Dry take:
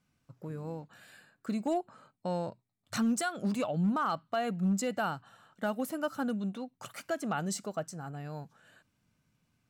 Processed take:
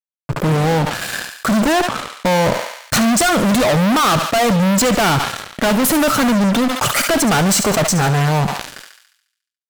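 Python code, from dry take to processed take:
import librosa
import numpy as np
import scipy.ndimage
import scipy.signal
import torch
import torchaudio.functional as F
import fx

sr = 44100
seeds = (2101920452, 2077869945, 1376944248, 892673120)

y = fx.fuzz(x, sr, gain_db=52.0, gate_db=-56.0)
y = fx.echo_thinned(y, sr, ms=71, feedback_pct=47, hz=740.0, wet_db=-12.0)
y = fx.sustainer(y, sr, db_per_s=73.0)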